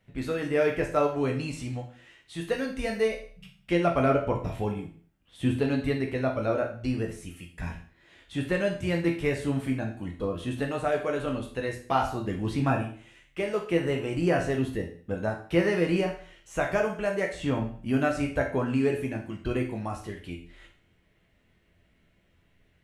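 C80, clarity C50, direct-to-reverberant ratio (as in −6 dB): 12.5 dB, 8.5 dB, 1.0 dB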